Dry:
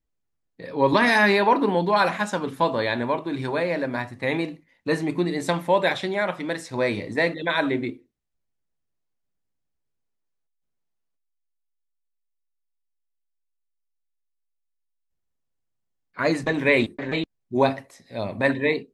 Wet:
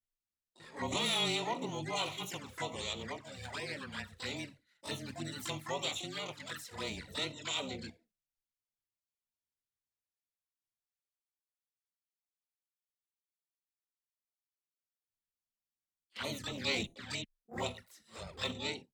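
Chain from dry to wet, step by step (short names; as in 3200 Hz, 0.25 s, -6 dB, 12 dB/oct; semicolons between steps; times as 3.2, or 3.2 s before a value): passive tone stack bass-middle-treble 5-5-5; harmoniser -5 st -7 dB, +7 st -12 dB, +12 st -3 dB; envelope flanger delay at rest 8.4 ms, full sweep at -33.5 dBFS; frequency shift -22 Hz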